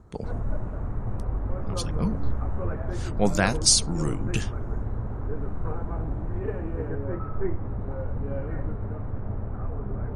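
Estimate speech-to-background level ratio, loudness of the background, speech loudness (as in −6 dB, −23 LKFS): 8.0 dB, −32.5 LKFS, −24.5 LKFS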